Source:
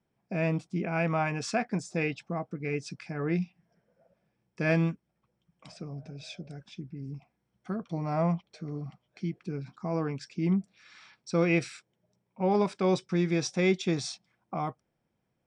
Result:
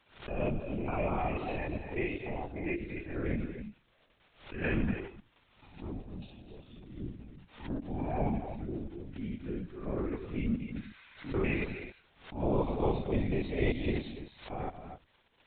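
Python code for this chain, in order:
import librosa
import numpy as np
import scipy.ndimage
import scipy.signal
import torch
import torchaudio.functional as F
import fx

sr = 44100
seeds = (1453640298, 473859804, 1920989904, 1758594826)

p1 = fx.spec_steps(x, sr, hold_ms=100)
p2 = scipy.signal.sosfilt(scipy.signal.butter(2, 140.0, 'highpass', fs=sr, output='sos'), p1)
p3 = fx.level_steps(p2, sr, step_db=21)
p4 = p2 + (p3 * librosa.db_to_amplitude(2.5))
p5 = fx.pitch_keep_formants(p4, sr, semitones=3.0)
p6 = fx.filter_lfo_notch(p5, sr, shape='saw_down', hz=0.17, low_hz=480.0, high_hz=2200.0, q=1.7)
p7 = fx.dmg_crackle(p6, sr, seeds[0], per_s=140.0, level_db=-40.0)
p8 = fx.echo_multitap(p7, sr, ms=(118, 241, 264), db=(-17.5, -11.0, -13.0))
p9 = fx.lpc_vocoder(p8, sr, seeds[1], excitation='whisper', order=16)
p10 = fx.pre_swell(p9, sr, db_per_s=130.0)
y = p10 * librosa.db_to_amplitude(-4.0)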